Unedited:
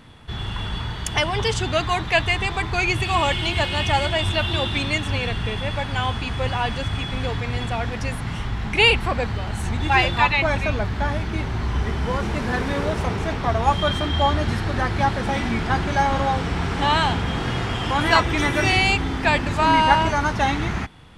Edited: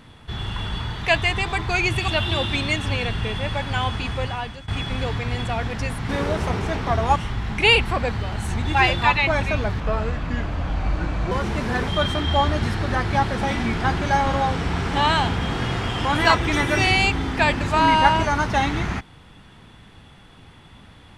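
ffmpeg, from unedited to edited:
ffmpeg -i in.wav -filter_complex "[0:a]asplit=9[link_01][link_02][link_03][link_04][link_05][link_06][link_07][link_08][link_09];[link_01]atrim=end=1.012[link_10];[link_02]atrim=start=2.048:end=3.122[link_11];[link_03]atrim=start=4.298:end=6.9,asetpts=PTS-STARTPTS,afade=type=out:start_time=2.002:duration=0.6:silence=0.11885[link_12];[link_04]atrim=start=6.9:end=8.312,asetpts=PTS-STARTPTS,afade=type=in:duration=0.004:curve=hsin:silence=0.11885[link_13];[link_05]atrim=start=12.658:end=13.732[link_14];[link_06]atrim=start=8.308:end=10.954[link_15];[link_07]atrim=start=10.95:end=12.1,asetpts=PTS-STARTPTS,asetrate=33516,aresample=44100,atrim=end_sample=66730,asetpts=PTS-STARTPTS[link_16];[link_08]atrim=start=12.096:end=12.662[link_17];[link_09]atrim=start=13.728[link_18];[link_10][link_11]acrossfade=duration=0.004:curve1=hsin:curve2=hsin[link_19];[link_12][link_13]concat=n=2:v=0:a=1[link_20];[link_19][link_20]acrossfade=duration=0.004:curve1=hsin:curve2=hsin[link_21];[link_21][link_14]acrossfade=duration=0.004:curve1=hsin:curve2=hsin[link_22];[link_22][link_15]acrossfade=duration=0.004:curve1=hsin:curve2=hsin[link_23];[link_23][link_16]acrossfade=duration=0.004:curve1=hsin:curve2=hsin[link_24];[link_24][link_17]acrossfade=duration=0.004:curve1=hsin:curve2=hsin[link_25];[link_25][link_18]acrossfade=duration=0.004:curve1=hsin:curve2=hsin" out.wav

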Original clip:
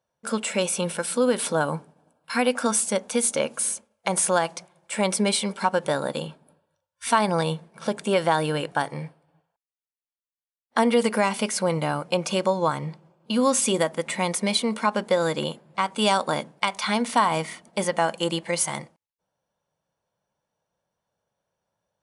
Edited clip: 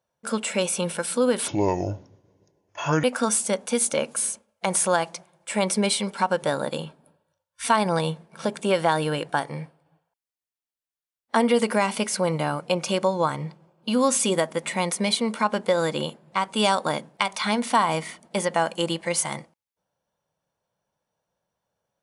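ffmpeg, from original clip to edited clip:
ffmpeg -i in.wav -filter_complex "[0:a]asplit=3[link_01][link_02][link_03];[link_01]atrim=end=1.484[link_04];[link_02]atrim=start=1.48:end=2.46,asetpts=PTS-STARTPTS,asetrate=27783,aresample=44100[link_05];[link_03]atrim=start=2.456[link_06];[link_04][link_05]acrossfade=duration=0.004:curve1=hsin:curve2=hsin[link_07];[link_07][link_06]acrossfade=duration=0.004:curve1=hsin:curve2=hsin" out.wav

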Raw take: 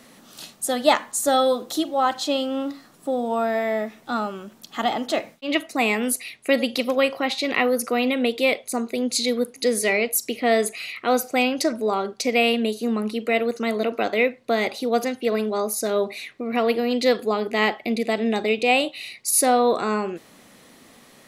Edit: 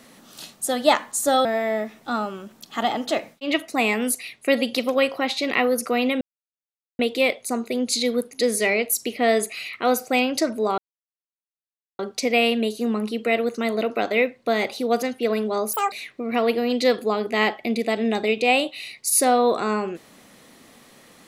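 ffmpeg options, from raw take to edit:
ffmpeg -i in.wav -filter_complex "[0:a]asplit=6[link_01][link_02][link_03][link_04][link_05][link_06];[link_01]atrim=end=1.452[link_07];[link_02]atrim=start=3.458:end=8.22,asetpts=PTS-STARTPTS,afade=type=out:start_time=4.758:duration=0.004:curve=hsin,apad=pad_dur=0.78[link_08];[link_03]atrim=start=8.22:end=12.01,asetpts=PTS-STARTPTS,afade=type=in:duration=0.004:curve=hsin,afade=type=out:start_time=3.786:duration=0.004:curve=hsin,apad=pad_dur=1.21[link_09];[link_04]atrim=start=12.01:end=15.754,asetpts=PTS-STARTPTS,afade=type=in:duration=0.004:curve=hsin[link_10];[link_05]atrim=start=15.75:end=16.13,asetpts=PTS-STARTPTS,asetrate=87318,aresample=44100[link_11];[link_06]atrim=start=16.126[link_12];[link_08][link_09][link_10]concat=n=3:v=0:a=1[link_13];[link_07][link_13]acrossfade=duration=0.004:curve1=hsin:curve2=hsin[link_14];[link_14][link_11]acrossfade=duration=0.004:curve1=hsin:curve2=hsin[link_15];[link_15][link_12]acrossfade=duration=0.004:curve1=hsin:curve2=hsin" out.wav

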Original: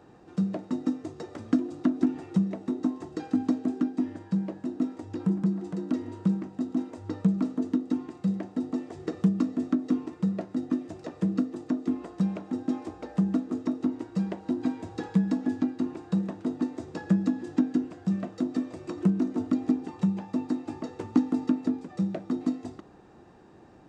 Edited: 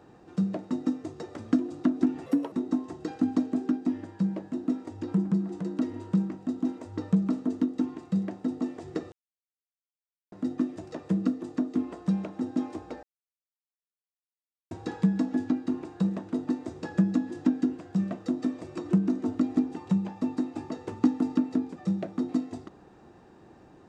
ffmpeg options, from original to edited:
ffmpeg -i in.wav -filter_complex "[0:a]asplit=7[link_01][link_02][link_03][link_04][link_05][link_06][link_07];[link_01]atrim=end=2.264[link_08];[link_02]atrim=start=2.26:end=2.64,asetpts=PTS-STARTPTS,asetrate=64386,aresample=44100,atrim=end_sample=11478,asetpts=PTS-STARTPTS[link_09];[link_03]atrim=start=2.636:end=9.24,asetpts=PTS-STARTPTS,afade=type=out:start_time=6.6:duration=0.004:curve=hsin[link_10];[link_04]atrim=start=9.24:end=10.44,asetpts=PTS-STARTPTS,volume=0[link_11];[link_05]atrim=start=10.44:end=13.15,asetpts=PTS-STARTPTS,afade=type=in:duration=0.004:curve=hsin,afade=type=out:start_time=2.706:duration=0.004:curve=hsin[link_12];[link_06]atrim=start=13.15:end=14.83,asetpts=PTS-STARTPTS,volume=0[link_13];[link_07]atrim=start=14.83,asetpts=PTS-STARTPTS,afade=type=in:duration=0.004:curve=hsin[link_14];[link_08][link_09]acrossfade=duration=0.004:curve1=hsin:curve2=hsin[link_15];[link_10][link_11][link_12][link_13][link_14]concat=n=5:v=0:a=1[link_16];[link_15][link_16]acrossfade=duration=0.004:curve1=hsin:curve2=hsin" out.wav

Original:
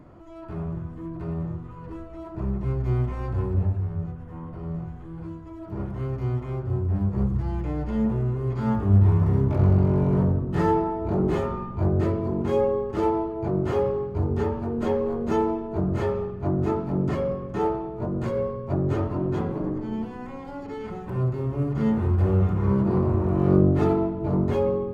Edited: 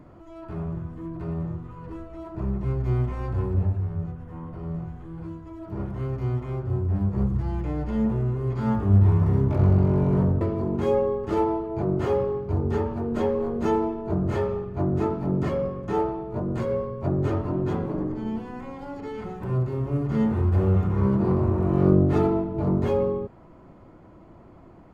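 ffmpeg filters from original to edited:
ffmpeg -i in.wav -filter_complex "[0:a]asplit=2[link_01][link_02];[link_01]atrim=end=10.412[link_03];[link_02]atrim=start=12.068[link_04];[link_03][link_04]acrossfade=duration=0.004:curve1=hsin:curve2=hsin" out.wav

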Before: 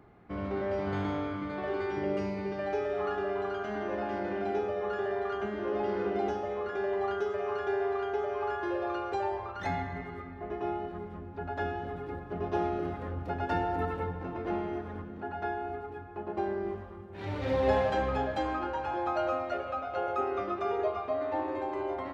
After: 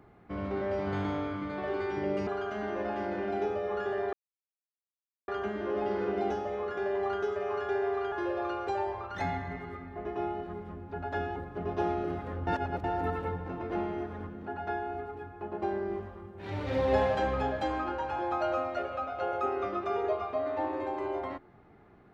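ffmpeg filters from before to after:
ffmpeg -i in.wav -filter_complex "[0:a]asplit=7[link_01][link_02][link_03][link_04][link_05][link_06][link_07];[link_01]atrim=end=2.272[link_08];[link_02]atrim=start=3.398:end=5.26,asetpts=PTS-STARTPTS,afade=type=out:start_time=1.858:duration=0.004:curve=hsin,apad=pad_dur=1.15[link_09];[link_03]atrim=start=5.26:end=8.102,asetpts=PTS-STARTPTS,afade=type=in:duration=0.004:curve=hsin[link_10];[link_04]atrim=start=8.568:end=11.812[link_11];[link_05]atrim=start=12.108:end=13.222[link_12];[link_06]atrim=start=13.218:end=13.592,asetpts=PTS-STARTPTS,areverse[link_13];[link_07]atrim=start=13.588[link_14];[link_09][link_10]concat=n=2:v=0:a=1[link_15];[link_08][link_15]acrossfade=duration=0.004:curve1=hsin:curve2=hsin[link_16];[link_16][link_11]acrossfade=duration=0.004:curve1=hsin:curve2=hsin[link_17];[link_17][link_12]acrossfade=duration=0.004:curve1=hsin:curve2=hsin[link_18];[link_18][link_13]acrossfade=duration=0.004:curve1=hsin:curve2=hsin[link_19];[link_19][link_14]acrossfade=duration=0.004:curve1=hsin:curve2=hsin" out.wav

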